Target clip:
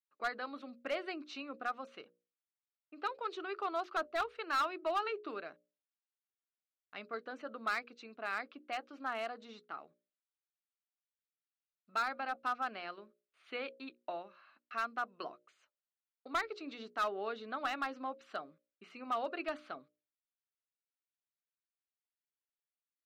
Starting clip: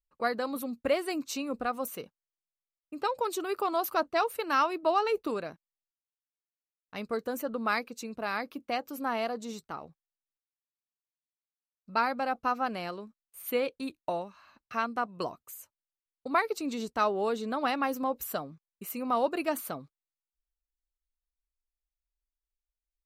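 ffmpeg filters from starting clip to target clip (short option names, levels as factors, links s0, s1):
-af "highpass=390,equalizer=f=500:t=q:w=4:g=-8,equalizer=f=930:t=q:w=4:g=-8,equalizer=f=1400:t=q:w=4:g=4,lowpass=f=3900:w=0.5412,lowpass=f=3900:w=1.3066,volume=15,asoftclip=hard,volume=0.0668,bandreject=f=60:t=h:w=6,bandreject=f=120:t=h:w=6,bandreject=f=180:t=h:w=6,bandreject=f=240:t=h:w=6,bandreject=f=300:t=h:w=6,bandreject=f=360:t=h:w=6,bandreject=f=420:t=h:w=6,bandreject=f=480:t=h:w=6,bandreject=f=540:t=h:w=6,bandreject=f=600:t=h:w=6,volume=0.596"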